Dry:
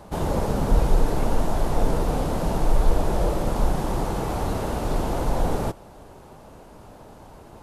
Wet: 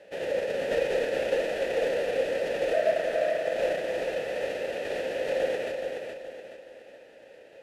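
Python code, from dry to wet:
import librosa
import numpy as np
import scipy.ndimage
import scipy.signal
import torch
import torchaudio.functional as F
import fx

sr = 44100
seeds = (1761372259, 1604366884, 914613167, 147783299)

p1 = fx.envelope_flatten(x, sr, power=0.6)
p2 = fx.ring_mod(p1, sr, carrier_hz=650.0, at=(2.73, 3.54))
p3 = fx.vowel_filter(p2, sr, vowel='e')
p4 = p3 + fx.echo_feedback(p3, sr, ms=423, feedback_pct=39, wet_db=-5.5, dry=0)
y = p4 * 10.0 ** (5.0 / 20.0)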